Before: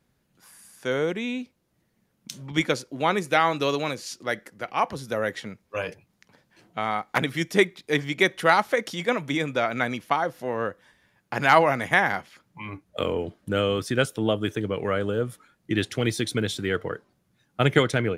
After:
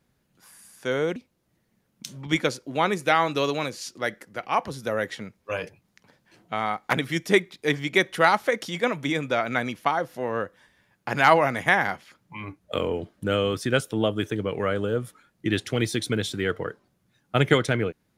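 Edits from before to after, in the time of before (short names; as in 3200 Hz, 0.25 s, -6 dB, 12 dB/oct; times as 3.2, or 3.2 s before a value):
1.16–1.41 cut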